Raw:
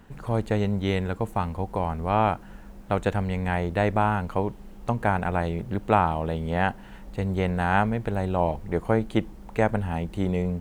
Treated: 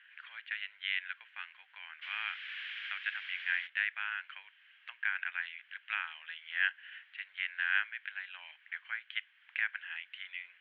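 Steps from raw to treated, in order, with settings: 2.01–3.66 s: added noise pink -38 dBFS; in parallel at 0 dB: compression, threshold -32 dBFS, peak gain reduction 16.5 dB; on the sum: elliptic band-pass 1.6–3.2 kHz, stop band 80 dB

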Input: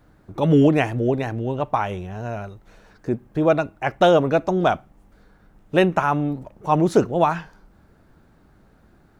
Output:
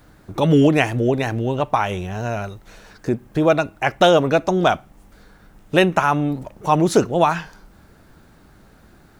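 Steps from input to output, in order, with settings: treble shelf 2.2 kHz +8.5 dB; in parallel at -1 dB: compression, threshold -24 dBFS, peak gain reduction 13.5 dB; on the sum: trim -1 dB

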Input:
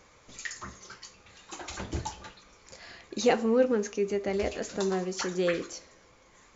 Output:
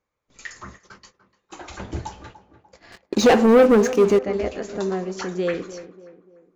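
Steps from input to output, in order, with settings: gate -47 dBFS, range -26 dB; treble shelf 3.2 kHz -9 dB; 2.92–4.19 s: waveshaping leveller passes 3; on a send: tape echo 294 ms, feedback 48%, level -12.5 dB, low-pass 1.3 kHz; on the sum: trim +4 dB

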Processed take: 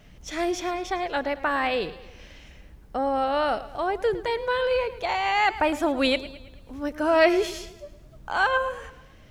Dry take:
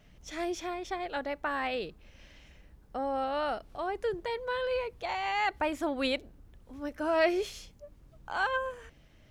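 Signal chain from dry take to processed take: modulated delay 109 ms, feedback 50%, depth 78 cents, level -16 dB; trim +7.5 dB

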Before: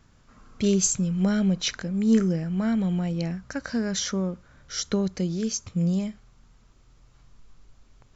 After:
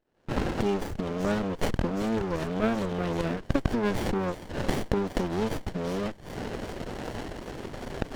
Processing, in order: octave divider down 1 oct, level 0 dB; recorder AGC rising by 74 dB/s; reverb removal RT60 0.71 s; gate -36 dBFS, range -8 dB; waveshaping leveller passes 2; peak limiter -7.5 dBFS, peak gain reduction 11.5 dB; band-pass 450–3500 Hz; feedback echo behind a high-pass 385 ms, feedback 84%, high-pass 2.6 kHz, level -13 dB; sliding maximum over 33 samples

